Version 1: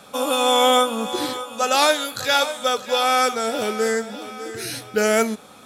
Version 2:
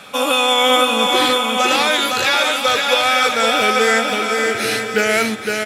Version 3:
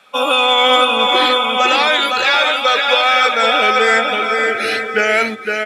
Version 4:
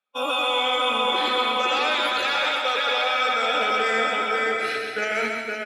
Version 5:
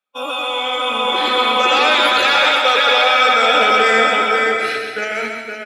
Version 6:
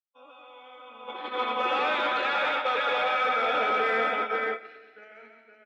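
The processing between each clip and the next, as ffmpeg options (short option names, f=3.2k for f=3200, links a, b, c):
-filter_complex "[0:a]equalizer=f=2.3k:t=o:w=1.4:g=10.5,alimiter=limit=-8.5dB:level=0:latency=1:release=51,asplit=2[a][b];[b]aecho=0:1:510|841.5|1057|1197|1288:0.631|0.398|0.251|0.158|0.1[c];[a][c]amix=inputs=2:normalize=0,volume=3dB"
-filter_complex "[0:a]afftdn=nr=14:nf=-25,equalizer=f=110:w=0.94:g=-8.5,acrossover=split=490|4400[a][b][c];[b]acontrast=24[d];[a][d][c]amix=inputs=3:normalize=0,volume=-1dB"
-filter_complex "[0:a]agate=range=-33dB:threshold=-11dB:ratio=3:detection=peak,alimiter=limit=-12.5dB:level=0:latency=1:release=21,asplit=2[a][b];[b]aecho=0:1:130|221|284.7|329.3|360.5:0.631|0.398|0.251|0.158|0.1[c];[a][c]amix=inputs=2:normalize=0,volume=-4dB"
-af "dynaudnorm=f=300:g=9:m=11.5dB,volume=1dB"
-af "agate=range=-17dB:threshold=-15dB:ratio=16:detection=peak,asoftclip=type=tanh:threshold=-9dB,highpass=200,lowpass=2.3k,volume=-9dB"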